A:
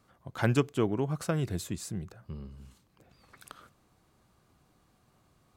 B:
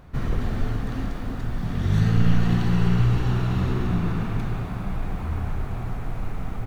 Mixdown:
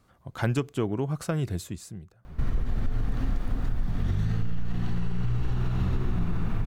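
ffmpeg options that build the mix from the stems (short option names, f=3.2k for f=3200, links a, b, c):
-filter_complex "[0:a]acontrast=81,volume=-6dB,afade=t=out:st=1.47:d=0.64:silence=0.251189[a];[1:a]alimiter=limit=-17.5dB:level=0:latency=1:release=85,adelay=2250,volume=-1.5dB[b];[a][b]amix=inputs=2:normalize=0,lowshelf=f=69:g=11.5,acompressor=threshold=-21dB:ratio=6"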